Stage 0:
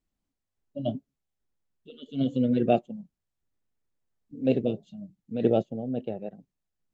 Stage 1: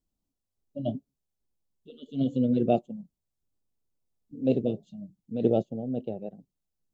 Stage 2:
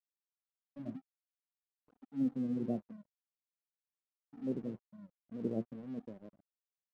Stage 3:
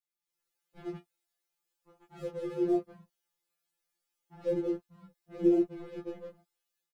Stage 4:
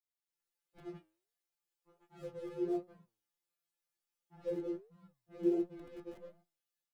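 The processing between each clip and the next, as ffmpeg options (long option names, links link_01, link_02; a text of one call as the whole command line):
ffmpeg -i in.wav -af "equalizer=frequency=1800:width_type=o:width=1.1:gain=-14.5" out.wav
ffmpeg -i in.wav -af "bandpass=frequency=220:width_type=q:width=1.3:csg=0,flanger=delay=3.3:depth=8.1:regen=61:speed=0.48:shape=sinusoidal,aeval=exprs='sgn(val(0))*max(abs(val(0))-0.00211,0)':channel_layout=same,volume=-3.5dB" out.wav
ffmpeg -i in.wav -filter_complex "[0:a]dynaudnorm=framelen=200:gausssize=3:maxgain=11.5dB,asplit=2[link_01][link_02];[link_02]adelay=14,volume=-3dB[link_03];[link_01][link_03]amix=inputs=2:normalize=0,afftfilt=real='re*2.83*eq(mod(b,8),0)':imag='im*2.83*eq(mod(b,8),0)':win_size=2048:overlap=0.75" out.wav
ffmpeg -i in.wav -filter_complex "[0:a]flanger=delay=5.5:depth=4:regen=89:speed=1.4:shape=sinusoidal,acrossover=split=120[link_01][link_02];[link_01]aeval=exprs='(mod(562*val(0)+1,2)-1)/562':channel_layout=same[link_03];[link_03][link_02]amix=inputs=2:normalize=0,volume=-2.5dB" out.wav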